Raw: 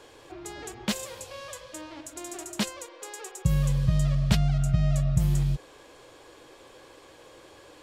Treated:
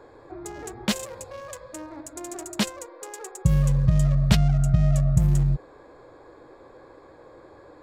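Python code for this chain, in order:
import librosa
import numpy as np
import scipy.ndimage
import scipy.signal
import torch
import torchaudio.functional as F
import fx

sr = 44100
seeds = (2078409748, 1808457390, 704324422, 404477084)

y = fx.wiener(x, sr, points=15)
y = F.gain(torch.from_numpy(y), 4.0).numpy()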